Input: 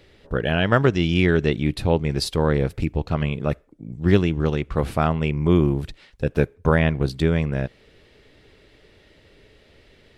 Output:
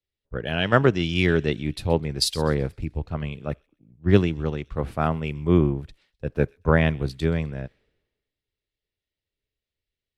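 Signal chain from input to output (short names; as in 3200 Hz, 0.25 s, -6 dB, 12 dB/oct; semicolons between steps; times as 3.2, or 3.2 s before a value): on a send: thin delay 0.128 s, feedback 47%, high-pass 3500 Hz, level -15 dB; on the sum: three-band expander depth 100%; gain -4 dB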